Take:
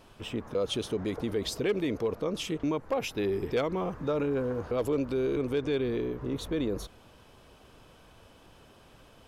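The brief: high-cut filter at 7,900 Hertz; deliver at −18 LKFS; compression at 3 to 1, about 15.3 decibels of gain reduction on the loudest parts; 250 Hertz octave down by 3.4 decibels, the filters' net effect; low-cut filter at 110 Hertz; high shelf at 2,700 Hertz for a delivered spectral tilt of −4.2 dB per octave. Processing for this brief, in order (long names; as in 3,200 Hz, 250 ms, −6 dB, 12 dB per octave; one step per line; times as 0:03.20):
high-pass filter 110 Hz
low-pass filter 7,900 Hz
parametric band 250 Hz −4.5 dB
high-shelf EQ 2,700 Hz +8 dB
downward compressor 3 to 1, threshold −47 dBFS
level +28.5 dB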